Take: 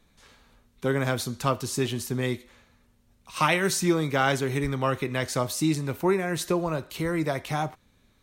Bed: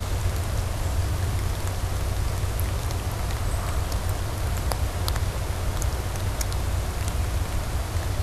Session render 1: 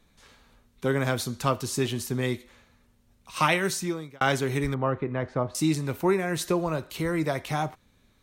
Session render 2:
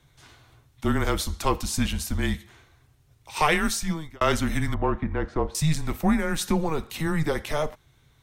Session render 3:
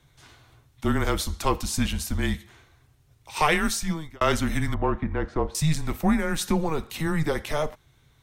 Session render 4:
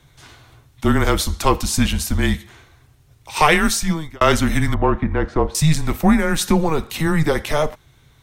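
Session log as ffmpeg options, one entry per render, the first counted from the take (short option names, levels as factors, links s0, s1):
-filter_complex "[0:a]asettb=1/sr,asplit=3[s0][s1][s2];[s0]atrim=end=4.744[s3];[s1]atrim=start=4.74:end=5.55,asetpts=PTS-STARTPTS,afade=t=in:d=0.004:c=qsin,afade=t=out:st=0.806:d=0.004:c=qsin,lowpass=1300[s4];[s2]atrim=start=5.546[s5];[s3][s4]acrossfade=d=0.004:c1=hsin:c2=qsin[s6];[s6][s5]acrossfade=d=0.004:c1=qsin:c2=hsin,asplit=2[s7][s8];[s7]atrim=end=4.21,asetpts=PTS-STARTPTS,afade=t=out:st=3.51:d=0.7[s9];[s8]atrim=start=4.21,asetpts=PTS-STARTPTS,afade=t=in:d=0.004:c=hsin[s10];[s9][s10]concat=n=2:v=0:a=1"
-filter_complex "[0:a]afreqshift=-160,asplit=2[s0][s1];[s1]asoftclip=type=tanh:threshold=0.0708,volume=0.422[s2];[s0][s2]amix=inputs=2:normalize=0"
-af anull
-af "volume=2.37"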